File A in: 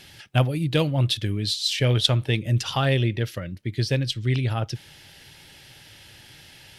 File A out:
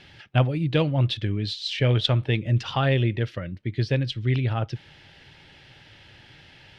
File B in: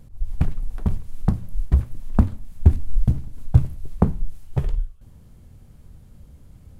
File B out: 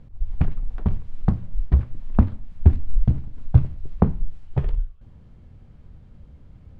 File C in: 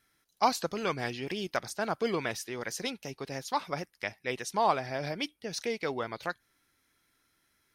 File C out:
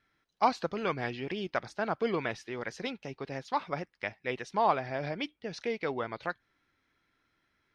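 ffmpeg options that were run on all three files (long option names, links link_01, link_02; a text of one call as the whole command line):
ffmpeg -i in.wav -af "lowpass=3200" out.wav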